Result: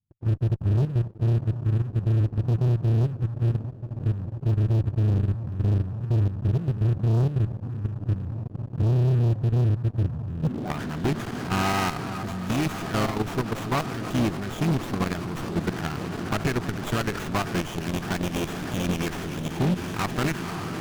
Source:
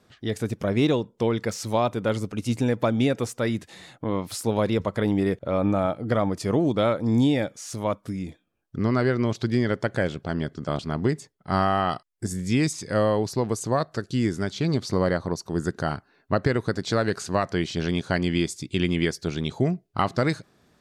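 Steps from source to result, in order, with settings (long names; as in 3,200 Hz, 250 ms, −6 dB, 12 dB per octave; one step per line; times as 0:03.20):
pitch-shifted copies added +4 semitones −9 dB
parametric band 540 Hz −12.5 dB 0.43 octaves
feedback delay with all-pass diffusion 567 ms, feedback 75%, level −14.5 dB
low-pass filter sweep 110 Hz → 3,500 Hz, 0:10.40–0:10.90
leveller curve on the samples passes 5
high-shelf EQ 8,600 Hz +10.5 dB
output level in coarse steps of 11 dB
notch filter 2,100 Hz, Q 7.3
brickwall limiter −9.5 dBFS, peak gain reduction 9 dB
windowed peak hold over 9 samples
level −8.5 dB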